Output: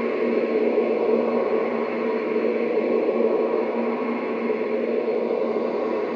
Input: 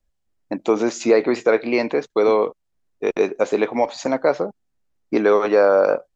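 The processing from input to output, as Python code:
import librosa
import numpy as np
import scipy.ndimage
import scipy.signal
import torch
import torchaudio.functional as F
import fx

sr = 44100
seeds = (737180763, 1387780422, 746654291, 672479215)

p1 = fx.air_absorb(x, sr, metres=270.0)
p2 = fx.auto_swell(p1, sr, attack_ms=639.0)
p3 = fx.leveller(p2, sr, passes=1)
p4 = p3 + fx.echo_swell(p3, sr, ms=112, loudest=8, wet_db=-9, dry=0)
p5 = fx.filter_lfo_notch(p4, sr, shape='saw_up', hz=3.5, low_hz=330.0, high_hz=2600.0, q=1.1)
p6 = fx.bandpass_edges(p5, sr, low_hz=210.0, high_hz=3900.0)
p7 = fx.paulstretch(p6, sr, seeds[0], factor=7.6, window_s=0.25, from_s=3.23)
y = F.gain(torch.from_numpy(p7), 6.0).numpy()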